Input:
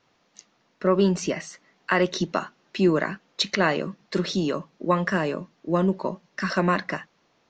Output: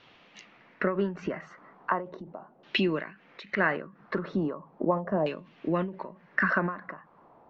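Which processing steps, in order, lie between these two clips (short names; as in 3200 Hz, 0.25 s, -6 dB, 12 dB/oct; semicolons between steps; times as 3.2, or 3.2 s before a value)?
compressor 3:1, threshold -36 dBFS, peak gain reduction 15.5 dB; LFO low-pass saw down 0.38 Hz 660–3300 Hz; ending taper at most 130 dB/s; gain +7 dB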